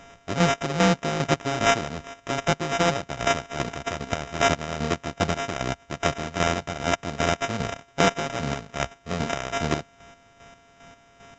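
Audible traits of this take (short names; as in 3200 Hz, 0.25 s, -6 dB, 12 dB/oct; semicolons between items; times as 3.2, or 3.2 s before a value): a buzz of ramps at a fixed pitch in blocks of 64 samples; chopped level 2.5 Hz, depth 60%, duty 35%; aliases and images of a low sample rate 4400 Hz, jitter 0%; A-law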